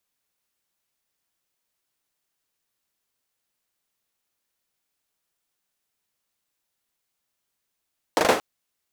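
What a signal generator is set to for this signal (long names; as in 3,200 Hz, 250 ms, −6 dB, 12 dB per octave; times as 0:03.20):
synth clap length 0.23 s, apart 39 ms, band 540 Hz, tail 0.37 s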